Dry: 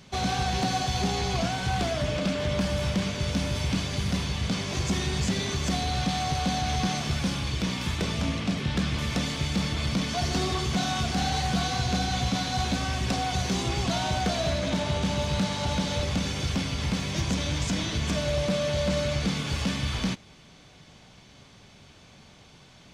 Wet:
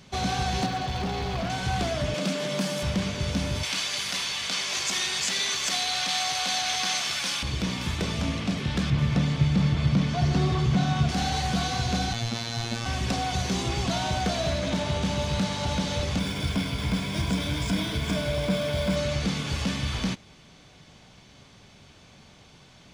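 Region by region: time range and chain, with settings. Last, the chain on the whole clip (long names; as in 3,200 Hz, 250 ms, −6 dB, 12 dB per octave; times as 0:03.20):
0:00.66–0:01.50: Gaussian smoothing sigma 1.7 samples + hard clipping −25.5 dBFS
0:02.14–0:02.83: elliptic high-pass filter 150 Hz + high-shelf EQ 5,400 Hz +10 dB
0:03.63–0:07.43: high-pass filter 550 Hz 6 dB per octave + tilt shelving filter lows −7.5 dB, about 740 Hz
0:08.90–0:11.09: low-pass filter 2,700 Hz 6 dB per octave + parametric band 140 Hz +11 dB 0.66 octaves
0:12.13–0:12.86: phases set to zero 116 Hz + double-tracking delay 15 ms −13 dB
0:16.19–0:18.96: EQ curve with evenly spaced ripples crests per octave 1.7, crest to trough 8 dB + linearly interpolated sample-rate reduction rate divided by 3×
whole clip: no processing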